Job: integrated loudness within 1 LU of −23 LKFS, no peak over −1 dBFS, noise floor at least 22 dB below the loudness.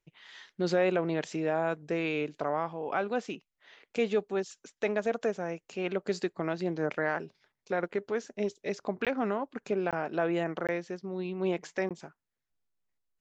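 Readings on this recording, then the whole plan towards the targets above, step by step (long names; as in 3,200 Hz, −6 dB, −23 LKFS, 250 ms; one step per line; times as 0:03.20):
number of dropouts 4; longest dropout 17 ms; integrated loudness −32.5 LKFS; sample peak −15.5 dBFS; target loudness −23.0 LKFS
→ repair the gap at 0:09.05/0:09.91/0:10.67/0:11.89, 17 ms
level +9.5 dB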